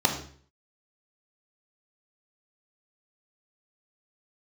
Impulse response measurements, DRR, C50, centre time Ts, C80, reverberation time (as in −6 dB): 3.0 dB, 8.0 dB, 19 ms, 11.0 dB, 0.50 s